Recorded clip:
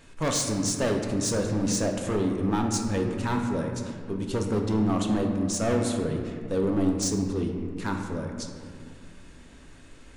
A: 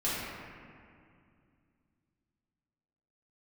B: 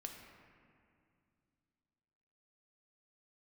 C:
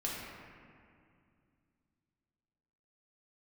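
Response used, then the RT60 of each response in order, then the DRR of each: B; 2.3, 2.4, 2.3 seconds; −10.5, 2.0, −5.0 decibels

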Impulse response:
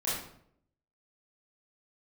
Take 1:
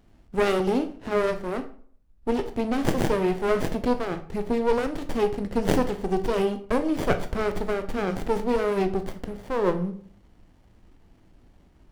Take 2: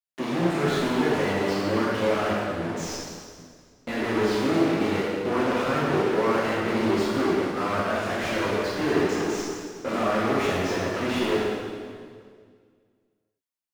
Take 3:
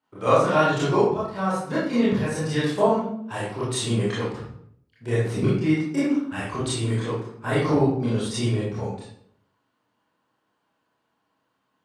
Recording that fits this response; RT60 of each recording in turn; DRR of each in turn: 3; 0.50, 2.0, 0.65 seconds; 7.5, −7.5, −9.5 decibels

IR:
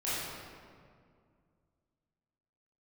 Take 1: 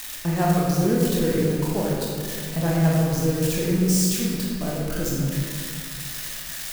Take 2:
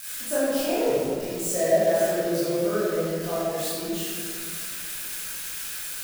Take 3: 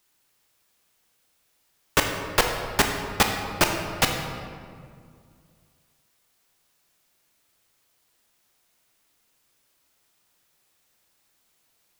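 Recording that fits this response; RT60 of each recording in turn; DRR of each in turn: 2; 2.1, 2.1, 2.2 seconds; −4.5, −11.5, 3.0 decibels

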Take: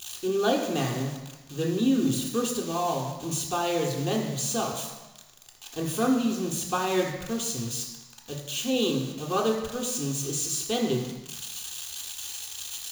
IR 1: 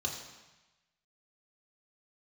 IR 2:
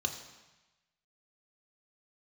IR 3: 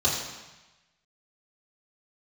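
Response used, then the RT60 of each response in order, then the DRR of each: 1; 1.1, 1.1, 1.1 seconds; −1.0, 3.5, −8.0 decibels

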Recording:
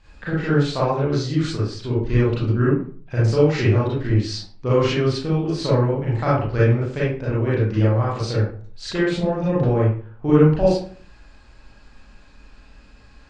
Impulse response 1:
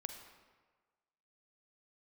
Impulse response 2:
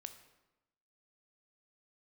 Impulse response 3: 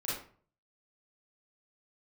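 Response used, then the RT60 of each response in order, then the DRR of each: 3; 1.4, 1.0, 0.45 seconds; 6.0, 8.5, −8.5 decibels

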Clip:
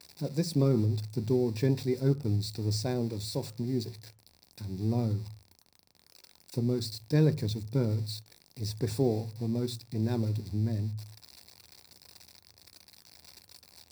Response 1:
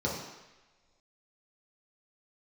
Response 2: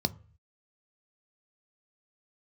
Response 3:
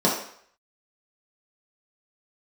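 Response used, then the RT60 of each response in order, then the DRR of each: 2; non-exponential decay, 0.40 s, 0.60 s; −5.5, 12.0, −5.5 decibels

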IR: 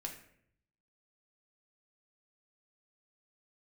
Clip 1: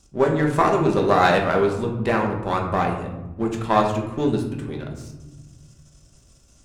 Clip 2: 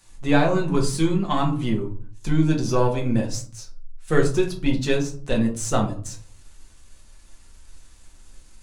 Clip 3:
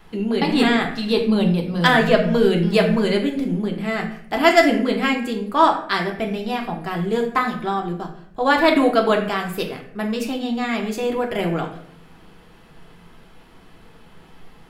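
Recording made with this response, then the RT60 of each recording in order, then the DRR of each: 3; 1.1, 0.45, 0.65 seconds; 0.5, −0.5, 1.0 decibels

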